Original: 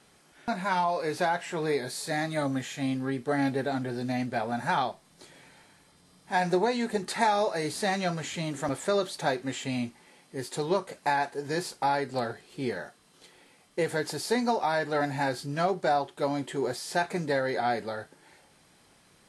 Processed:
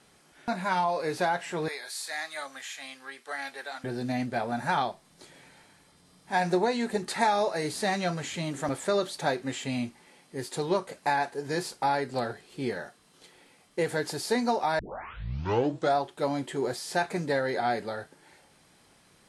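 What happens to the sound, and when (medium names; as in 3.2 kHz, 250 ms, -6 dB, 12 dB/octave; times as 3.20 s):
1.68–3.84 s: high-pass 1.1 kHz
14.79 s: tape start 1.18 s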